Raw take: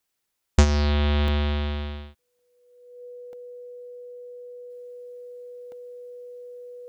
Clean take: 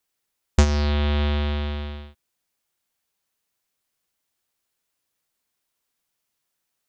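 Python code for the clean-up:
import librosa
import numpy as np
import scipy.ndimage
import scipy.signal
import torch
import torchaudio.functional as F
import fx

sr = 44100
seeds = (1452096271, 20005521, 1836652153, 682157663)

y = fx.notch(x, sr, hz=490.0, q=30.0)
y = fx.fix_interpolate(y, sr, at_s=(1.28, 2.39, 3.33, 5.72), length_ms=1.4)
y = fx.gain(y, sr, db=fx.steps((0.0, 0.0), (4.7, -4.5)))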